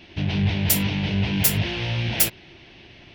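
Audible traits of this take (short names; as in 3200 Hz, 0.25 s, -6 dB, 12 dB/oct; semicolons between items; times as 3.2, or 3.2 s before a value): noise floor -48 dBFS; spectral tilt -3.0 dB/oct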